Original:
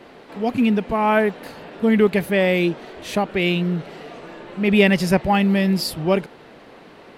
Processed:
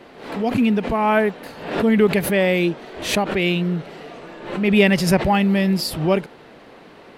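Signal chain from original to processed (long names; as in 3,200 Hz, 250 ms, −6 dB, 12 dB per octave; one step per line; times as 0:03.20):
background raised ahead of every attack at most 82 dB per second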